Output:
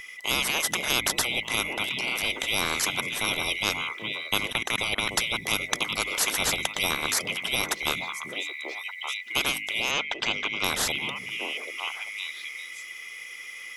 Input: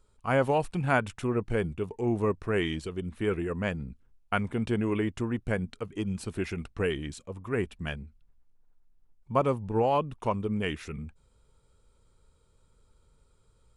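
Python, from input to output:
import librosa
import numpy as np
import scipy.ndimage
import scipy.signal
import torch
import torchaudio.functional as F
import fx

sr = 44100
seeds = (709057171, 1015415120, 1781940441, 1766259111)

p1 = fx.band_swap(x, sr, width_hz=2000)
p2 = fx.rider(p1, sr, range_db=4, speed_s=2.0)
p3 = p1 + F.gain(torch.from_numpy(p2), -1.0).numpy()
p4 = fx.low_shelf(p3, sr, hz=400.0, db=-7.5)
p5 = fx.hum_notches(p4, sr, base_hz=50, count=6)
p6 = p5 + fx.echo_stepped(p5, sr, ms=391, hz=160.0, octaves=1.4, feedback_pct=70, wet_db=-10.0, dry=0)
p7 = fx.level_steps(p6, sr, step_db=23, at=(4.47, 5.09))
p8 = fx.lowpass(p7, sr, hz=5900.0, slope=24, at=(9.91, 10.64))
y = fx.spectral_comp(p8, sr, ratio=4.0)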